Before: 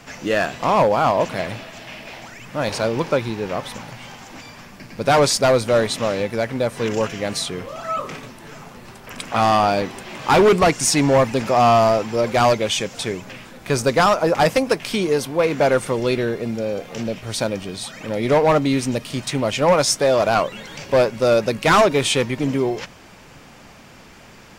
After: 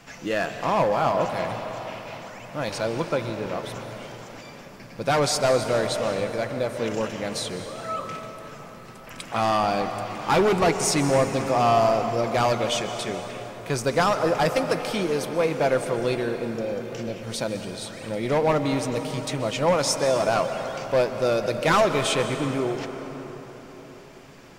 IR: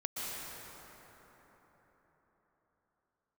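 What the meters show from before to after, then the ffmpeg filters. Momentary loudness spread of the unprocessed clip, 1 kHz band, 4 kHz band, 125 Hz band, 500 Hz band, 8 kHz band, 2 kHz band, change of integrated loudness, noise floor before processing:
19 LU, -5.0 dB, -5.5 dB, -4.5 dB, -5.0 dB, -5.5 dB, -5.0 dB, -5.5 dB, -44 dBFS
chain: -filter_complex "[0:a]asplit=2[s0][s1];[1:a]atrim=start_sample=2205,adelay=6[s2];[s1][s2]afir=irnorm=-1:irlink=0,volume=0.316[s3];[s0][s3]amix=inputs=2:normalize=0,volume=0.501"

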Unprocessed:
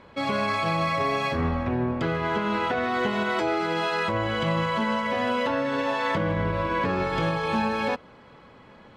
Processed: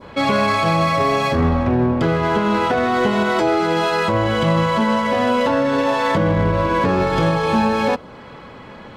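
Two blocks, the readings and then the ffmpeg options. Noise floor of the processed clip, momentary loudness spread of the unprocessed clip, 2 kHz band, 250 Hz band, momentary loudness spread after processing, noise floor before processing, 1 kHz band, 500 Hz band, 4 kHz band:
-39 dBFS, 2 LU, +5.5 dB, +9.0 dB, 1 LU, -51 dBFS, +7.5 dB, +8.5 dB, +6.5 dB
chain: -filter_complex "[0:a]asplit=2[s0][s1];[s1]asoftclip=type=tanh:threshold=0.0224,volume=0.708[s2];[s0][s2]amix=inputs=2:normalize=0,adynamicequalizer=threshold=0.00891:dfrequency=2200:dqfactor=0.74:tfrequency=2200:tqfactor=0.74:attack=5:release=100:ratio=0.375:range=2.5:mode=cutabove:tftype=bell,volume=2.37"

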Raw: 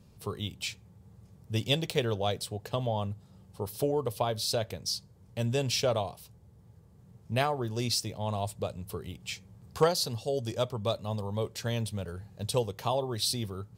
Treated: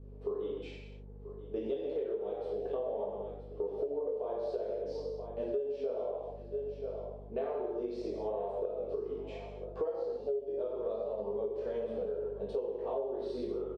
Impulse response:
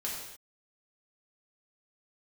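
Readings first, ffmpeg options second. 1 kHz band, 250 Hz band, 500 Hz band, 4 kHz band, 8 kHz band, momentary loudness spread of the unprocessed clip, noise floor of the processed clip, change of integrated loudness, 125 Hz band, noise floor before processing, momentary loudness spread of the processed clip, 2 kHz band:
-10.0 dB, -6.5 dB, -0.5 dB, under -25 dB, under -35 dB, 12 LU, -48 dBFS, -5.5 dB, -19.0 dB, -58 dBFS, 6 LU, under -15 dB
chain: -filter_complex "[0:a]flanger=delay=19:depth=3.1:speed=0.88,highpass=f=280:w=0.5412,highpass=f=280:w=1.3066,equalizer=f=460:t=o:w=1.1:g=13.5,aecho=1:1:982|1964|2946:0.112|0.0404|0.0145[s0];[1:a]atrim=start_sample=2205[s1];[s0][s1]afir=irnorm=-1:irlink=0,aeval=exprs='val(0)+0.00316*(sin(2*PI*50*n/s)+sin(2*PI*2*50*n/s)/2+sin(2*PI*3*50*n/s)/3+sin(2*PI*4*50*n/s)/4+sin(2*PI*5*50*n/s)/5)':c=same,lowpass=2600,tiltshelf=f=970:g=7.5,acompressor=threshold=0.0447:ratio=12,volume=0.562"

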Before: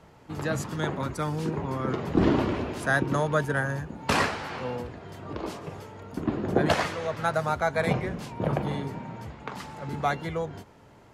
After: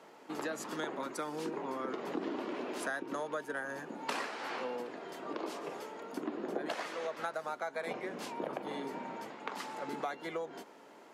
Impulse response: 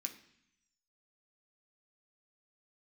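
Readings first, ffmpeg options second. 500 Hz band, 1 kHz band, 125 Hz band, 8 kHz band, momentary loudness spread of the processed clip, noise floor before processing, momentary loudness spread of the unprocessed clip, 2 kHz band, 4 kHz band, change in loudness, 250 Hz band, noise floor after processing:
-9.0 dB, -9.0 dB, -26.0 dB, -7.5 dB, 5 LU, -53 dBFS, 14 LU, -10.5 dB, -9.0 dB, -11.0 dB, -12.0 dB, -56 dBFS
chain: -af "highpass=f=260:w=0.5412,highpass=f=260:w=1.3066,acompressor=threshold=0.0178:ratio=6"

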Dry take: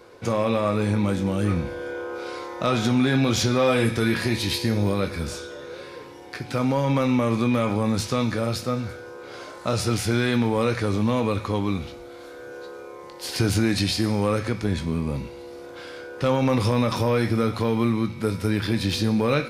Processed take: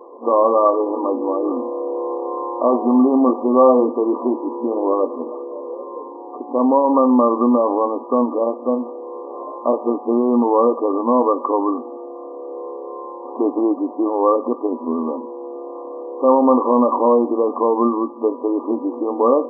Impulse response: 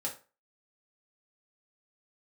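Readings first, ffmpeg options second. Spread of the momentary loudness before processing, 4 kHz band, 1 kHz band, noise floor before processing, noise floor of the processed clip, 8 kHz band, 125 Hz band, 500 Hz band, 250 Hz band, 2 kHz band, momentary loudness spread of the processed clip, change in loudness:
17 LU, under -40 dB, +10.5 dB, -41 dBFS, -34 dBFS, under -40 dB, under -20 dB, +9.0 dB, +5.0 dB, under -40 dB, 17 LU, +5.5 dB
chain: -af "crystalizer=i=9.5:c=0,afftfilt=real='re*between(b*sr/4096,230,1200)':imag='im*between(b*sr/4096,230,1200)':win_size=4096:overlap=0.75,volume=2.24"

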